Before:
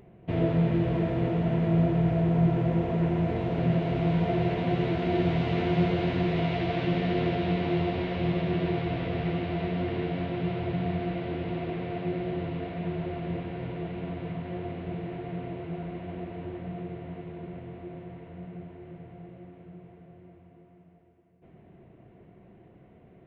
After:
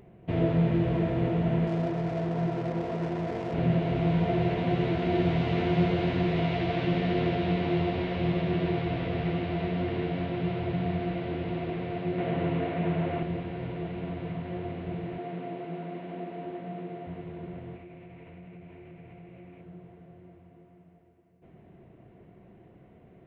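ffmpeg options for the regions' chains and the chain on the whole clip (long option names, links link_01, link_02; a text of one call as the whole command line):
ffmpeg -i in.wav -filter_complex "[0:a]asettb=1/sr,asplit=3[link_01][link_02][link_03];[link_01]atrim=end=1.674[link_04];[link_02]atrim=start=1.67:end=3.54,asetpts=PTS-STARTPTS,afade=type=in:duration=0.004:curve=qsin,afade=type=out:start_time=1.866:duration=0.004:curve=qsin,aemphasis=mode=production:type=bsi,adynamicsmooth=sensitivity=7.5:basefreq=650[link_05];[link_03]atrim=start=3.536[link_06];[link_04][link_05]acrossfade=duration=0.004:curve1=hsin:curve2=qsin[link_07];[link_07][link_06]acrossfade=duration=0.004:curve1=qsin:curve2=hsin,asettb=1/sr,asplit=3[link_08][link_09][link_10];[link_08]atrim=end=12.184[link_11];[link_09]atrim=start=12.18:end=13.23,asetpts=PTS-STARTPTS,afade=type=in:duration=0.004:curve=qsin,afade=type=out:start_time=1.046:duration=0.004:curve=qsin,bandreject=frequency=60:width_type=h:width=6,bandreject=frequency=120:width_type=h:width=6,bandreject=frequency=180:width_type=h:width=6,bandreject=frequency=240:width_type=h:width=6,bandreject=frequency=300:width_type=h:width=6,bandreject=frequency=360:width_type=h:width=6,acontrast=52,highpass=110,lowpass=3400[link_12];[link_10]atrim=start=13.226[link_13];[link_11][link_12]acrossfade=duration=0.004:curve1=hsin:curve2=qsin[link_14];[link_14][link_13]acrossfade=duration=0.004:curve1=qsin:curve2=hsin,asettb=1/sr,asplit=3[link_15][link_16][link_17];[link_15]atrim=end=15.184[link_18];[link_16]atrim=start=15.18:end=17.07,asetpts=PTS-STARTPTS,afade=type=in:duration=0.004:curve=qsin,afade=type=out:start_time=1.886:duration=0.004:curve=qsin,highpass=frequency=170:width=0.5412,highpass=frequency=170:width=1.3066,aeval=exprs='val(0)+0.00708*sin(2*PI*700*n/s)':channel_layout=same[link_19];[link_17]atrim=start=17.066[link_20];[link_18][link_19]acrossfade=duration=0.004:curve1=hsin:curve2=qsin[link_21];[link_21][link_20]acrossfade=duration=0.004:curve1=qsin:curve2=hsin,asettb=1/sr,asplit=3[link_22][link_23][link_24];[link_22]atrim=end=17.764[link_25];[link_23]atrim=start=17.76:end=19.61,asetpts=PTS-STARTPTS,afade=type=in:duration=0.004:curve=qsin,afade=type=out:start_time=1.846:duration=0.004:curve=qsin,equalizer=frequency=2400:width_type=o:width=0.45:gain=10.5,acompressor=threshold=-44dB:ratio=4:attack=3.2:release=140:knee=1:detection=peak[link_26];[link_24]atrim=start=19.606[link_27];[link_25][link_26]acrossfade=duration=0.004:curve1=hsin:curve2=qsin[link_28];[link_28][link_27]acrossfade=duration=0.004:curve1=qsin:curve2=hsin" out.wav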